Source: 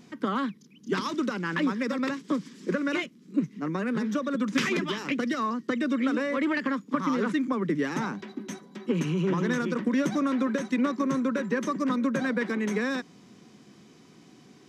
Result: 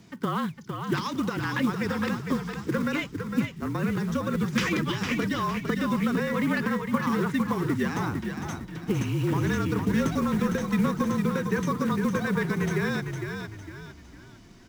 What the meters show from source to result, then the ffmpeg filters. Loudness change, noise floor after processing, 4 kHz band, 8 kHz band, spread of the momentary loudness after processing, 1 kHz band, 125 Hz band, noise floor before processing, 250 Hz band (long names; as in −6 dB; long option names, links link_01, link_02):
+1.0 dB, −48 dBFS, +1.0 dB, +2.5 dB, 8 LU, +1.5 dB, +7.5 dB, −55 dBFS, +0.5 dB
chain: -filter_complex "[0:a]acrusher=bits=6:mode=log:mix=0:aa=0.000001,asplit=6[link_01][link_02][link_03][link_04][link_05][link_06];[link_02]adelay=456,afreqshift=-35,volume=-6dB[link_07];[link_03]adelay=912,afreqshift=-70,volume=-14.4dB[link_08];[link_04]adelay=1368,afreqshift=-105,volume=-22.8dB[link_09];[link_05]adelay=1824,afreqshift=-140,volume=-31.2dB[link_10];[link_06]adelay=2280,afreqshift=-175,volume=-39.6dB[link_11];[link_01][link_07][link_08][link_09][link_10][link_11]amix=inputs=6:normalize=0,afreqshift=-40"